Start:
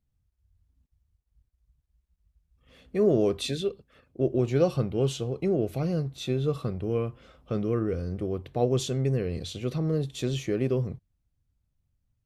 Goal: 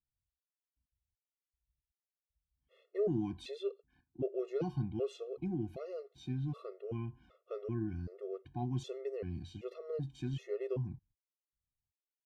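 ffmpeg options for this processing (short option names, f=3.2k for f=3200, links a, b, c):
-af "agate=range=-12dB:threshold=-57dB:ratio=16:detection=peak,aemphasis=mode=reproduction:type=75kf,afftfilt=real='re*gt(sin(2*PI*1.3*pts/sr)*(1-2*mod(floor(b*sr/1024/360),2)),0)':imag='im*gt(sin(2*PI*1.3*pts/sr)*(1-2*mod(floor(b*sr/1024/360),2)),0)':win_size=1024:overlap=0.75,volume=-7.5dB"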